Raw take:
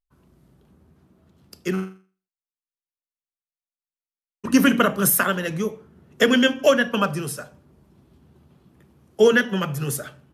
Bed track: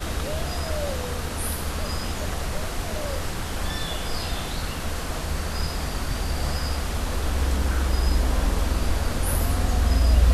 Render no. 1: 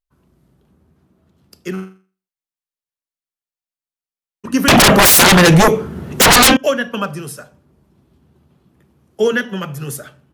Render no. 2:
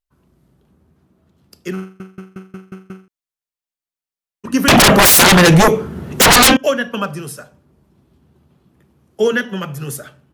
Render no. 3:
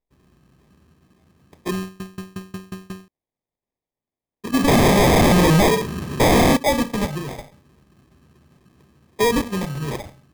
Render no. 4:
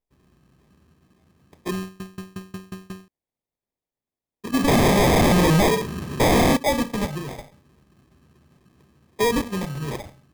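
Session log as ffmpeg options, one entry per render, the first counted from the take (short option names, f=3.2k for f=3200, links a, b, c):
-filter_complex "[0:a]asettb=1/sr,asplit=3[a][b][c];[a]atrim=end=4.684[d];[b]atrim=start=4.68:end=6.57,asetpts=PTS-STARTPTS,afade=t=in:d=0.004:c=qsin,afade=t=out:st=1.886:d=0.004:c=qsin,aeval=exprs='0.562*sin(PI/2*10*val(0)/0.562)':c=same[e];[c]atrim=start=6.566[f];[d][e]acrossfade=d=0.004:c1=hsin:c2=qsin[g];[g][f]acrossfade=d=0.004:c1=qsin:c2=hsin"
-filter_complex "[0:a]asplit=8[a][b][c][d][e][f][g][h];[a]atrim=end=2.002[i];[b]atrim=start=1.818:end=2.002[j];[c]atrim=start=1.818:end=2.002[k];[d]atrim=start=1.818:end=2.002[l];[e]atrim=start=1.818:end=2.002[m];[f]atrim=start=1.818:end=2.002[n];[g]atrim=start=1.818:end=2.002[o];[h]atrim=start=3.078[p];[i][j]acrossfade=d=0.004:c1=hsin:c2=hsin[q];[q][k]acrossfade=d=0.004:c1=hsin:c2=hsin[r];[r][l]acrossfade=d=0.004:c1=hsin:c2=hsin[s];[s][m]acrossfade=d=0.004:c1=hsin:c2=hsin[t];[t][n]acrossfade=d=0.004:c1=hsin:c2=hsin[u];[u][o]acrossfade=d=0.004:c1=hsin:c2=hsin[v];[v][p]acrossfade=d=0.004:c1=hsin:c2=hsin"
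-af "acrusher=samples=31:mix=1:aa=0.000001,asoftclip=type=tanh:threshold=-12dB"
-af "volume=-2.5dB"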